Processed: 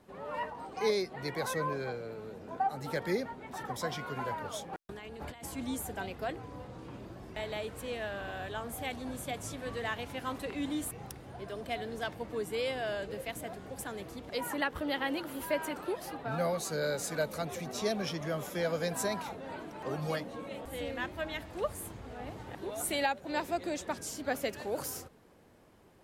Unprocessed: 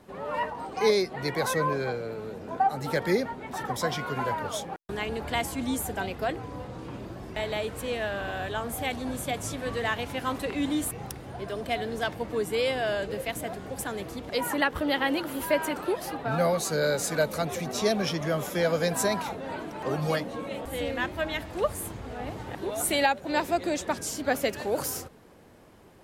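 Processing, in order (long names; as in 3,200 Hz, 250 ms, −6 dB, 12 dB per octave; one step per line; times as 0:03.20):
0:04.73–0:05.44: compressor whose output falls as the input rises −38 dBFS, ratio −1
level −7 dB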